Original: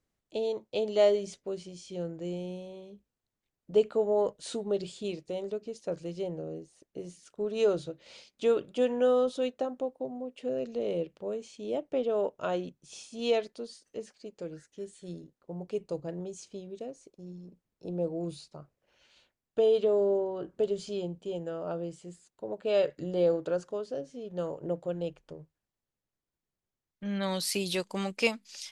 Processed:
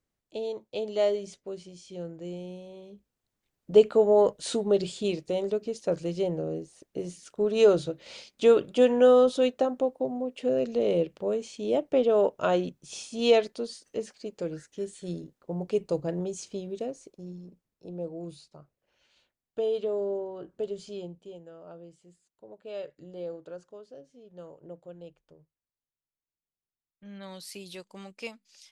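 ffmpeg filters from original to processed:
-af "volume=2.11,afade=t=in:st=2.62:d=1.11:silence=0.375837,afade=t=out:st=16.83:d=1.03:silence=0.298538,afade=t=out:st=21.02:d=0.4:silence=0.421697"

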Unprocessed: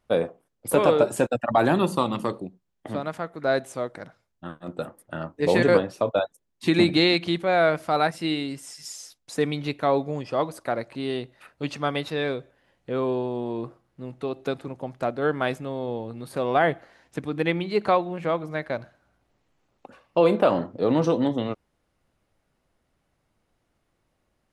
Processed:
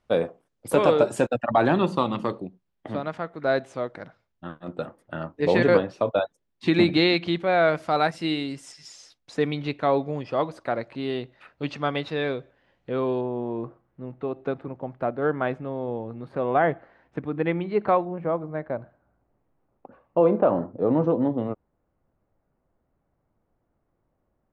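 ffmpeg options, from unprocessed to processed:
-af "asetnsamples=n=441:p=0,asendcmd='1.27 lowpass f 4300;7.68 lowpass f 7000;8.72 lowpass f 4300;13.21 lowpass f 1800;18.05 lowpass f 1100',lowpass=7800"

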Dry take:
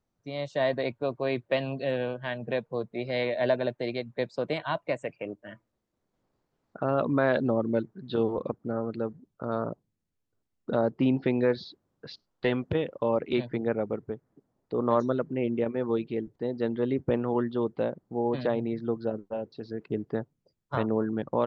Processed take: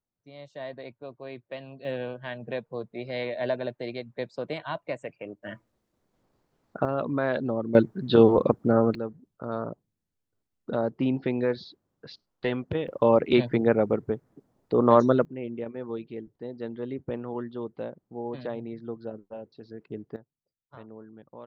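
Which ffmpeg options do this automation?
-af "asetnsamples=n=441:p=0,asendcmd='1.85 volume volume -3dB;5.43 volume volume 5.5dB;6.85 volume volume -2.5dB;7.75 volume volume 10dB;8.95 volume volume -1.5dB;12.88 volume volume 6.5dB;15.25 volume volume -6.5dB;20.16 volume volume -18.5dB',volume=0.266"

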